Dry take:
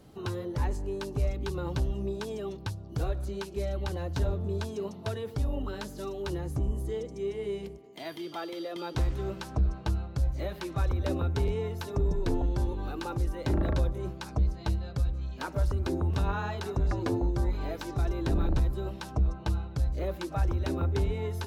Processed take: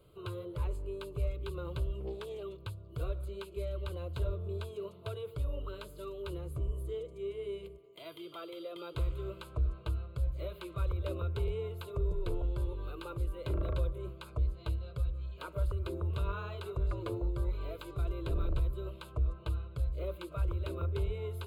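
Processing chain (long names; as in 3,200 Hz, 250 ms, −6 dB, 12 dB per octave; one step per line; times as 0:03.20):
phaser with its sweep stopped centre 1,200 Hz, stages 8
0:02.00–0:02.43: highs frequency-modulated by the lows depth 0.43 ms
level −4 dB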